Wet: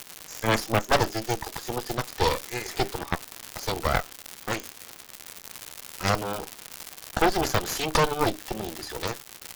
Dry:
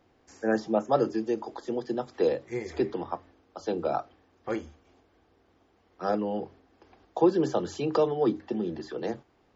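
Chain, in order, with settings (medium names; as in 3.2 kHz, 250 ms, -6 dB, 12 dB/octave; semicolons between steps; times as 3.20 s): crackle 420 per s -42 dBFS; tilt EQ +4 dB/octave; Chebyshev shaper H 8 -9 dB, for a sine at -11 dBFS; trim +1.5 dB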